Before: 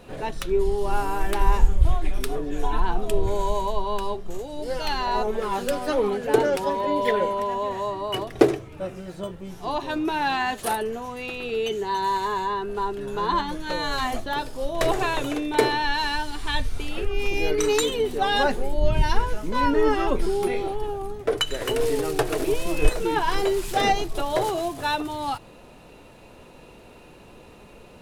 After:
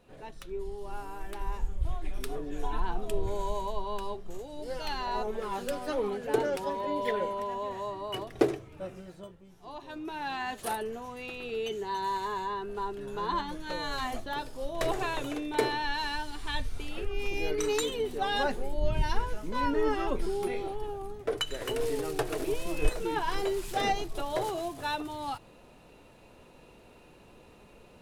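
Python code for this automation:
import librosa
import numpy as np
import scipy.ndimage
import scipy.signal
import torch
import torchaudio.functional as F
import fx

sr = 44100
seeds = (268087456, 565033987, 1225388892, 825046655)

y = fx.gain(x, sr, db=fx.line((1.6, -15.0), (2.3, -8.0), (8.99, -8.0), (9.48, -18.5), (10.66, -7.5)))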